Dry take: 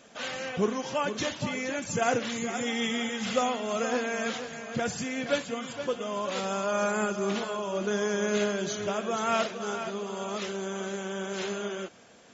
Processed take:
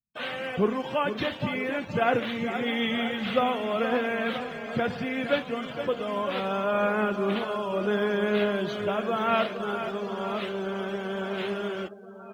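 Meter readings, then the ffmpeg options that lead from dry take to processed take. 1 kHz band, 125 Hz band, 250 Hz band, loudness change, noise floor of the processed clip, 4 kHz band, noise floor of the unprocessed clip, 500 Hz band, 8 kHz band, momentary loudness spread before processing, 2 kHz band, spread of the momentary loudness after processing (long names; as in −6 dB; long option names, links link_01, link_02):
+2.5 dB, +3.0 dB, +3.0 dB, +2.5 dB, −42 dBFS, +0.5 dB, −44 dBFS, +2.5 dB, can't be measured, 7 LU, +2.5 dB, 7 LU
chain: -filter_complex "[0:a]lowpass=frequency=3800:width=0.5412,lowpass=frequency=3800:width=1.3066,acrossover=split=150[link_01][link_02];[link_02]acrusher=bits=6:mix=0:aa=0.000001[link_03];[link_01][link_03]amix=inputs=2:normalize=0,aecho=1:1:980|1960|2940|3920|4900|5880:0.188|0.109|0.0634|0.0368|0.0213|0.0124,afftdn=noise_reduction=25:noise_floor=-45,volume=2.5dB"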